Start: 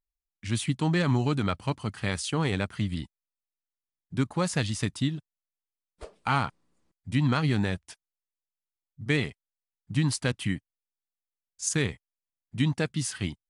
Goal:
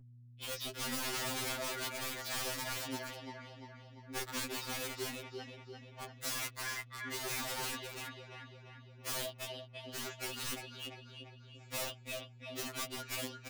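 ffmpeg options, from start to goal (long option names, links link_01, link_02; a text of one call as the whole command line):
ffmpeg -i in.wav -filter_complex "[0:a]tiltshelf=frequency=1200:gain=-5.5,asetrate=66075,aresample=44100,atempo=0.66742,alimiter=limit=-20.5dB:level=0:latency=1:release=38,acrossover=split=3600[link_01][link_02];[link_02]acompressor=threshold=-43dB:ratio=4:attack=1:release=60[link_03];[link_01][link_03]amix=inputs=2:normalize=0,aecho=1:1:3.5:0.6,aecho=1:1:345|690|1035|1380|1725|2070|2415:0.398|0.219|0.12|0.0662|0.0364|0.02|0.011,aresample=16000,asoftclip=type=hard:threshold=-28.5dB,aresample=44100,adynamicsmooth=sensitivity=7:basefreq=2100,highpass=570,aeval=exprs='(mod(66.8*val(0)+1,2)-1)/66.8':channel_layout=same,aeval=exprs='val(0)+0.00141*(sin(2*PI*60*n/s)+sin(2*PI*2*60*n/s)/2+sin(2*PI*3*60*n/s)/3+sin(2*PI*4*60*n/s)/4+sin(2*PI*5*60*n/s)/5)':channel_layout=same,afftfilt=real='re*2.45*eq(mod(b,6),0)':imag='im*2.45*eq(mod(b,6),0)':win_size=2048:overlap=0.75,volume=6.5dB" out.wav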